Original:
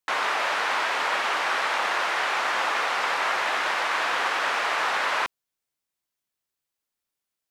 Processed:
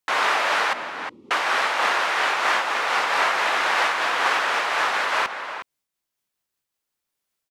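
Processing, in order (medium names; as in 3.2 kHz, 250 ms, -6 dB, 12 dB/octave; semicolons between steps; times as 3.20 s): 0.73–1.31 s: inverse Chebyshev low-pass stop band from 620 Hz, stop band 40 dB; echo from a far wall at 62 m, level -9 dB; random flutter of the level, depth 55%; trim +5.5 dB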